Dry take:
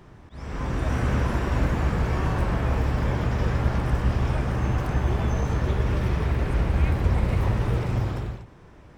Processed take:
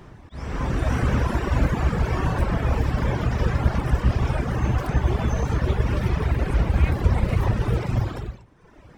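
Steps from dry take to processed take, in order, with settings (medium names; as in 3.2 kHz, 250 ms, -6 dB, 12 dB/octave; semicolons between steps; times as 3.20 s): reverb removal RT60 1.1 s; trim +4.5 dB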